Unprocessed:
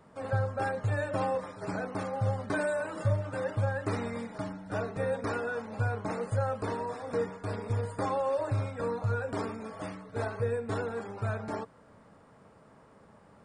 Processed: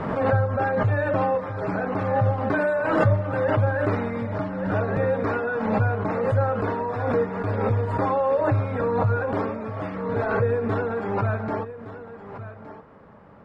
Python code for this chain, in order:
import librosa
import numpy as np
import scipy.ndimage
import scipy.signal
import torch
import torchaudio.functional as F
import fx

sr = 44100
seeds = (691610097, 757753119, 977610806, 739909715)

y = scipy.signal.sosfilt(scipy.signal.butter(2, 2400.0, 'lowpass', fs=sr, output='sos'), x)
y = y + 10.0 ** (-13.5 / 20.0) * np.pad(y, (int(1166 * sr / 1000.0), 0))[:len(y)]
y = fx.pre_swell(y, sr, db_per_s=38.0)
y = y * 10.0 ** (7.5 / 20.0)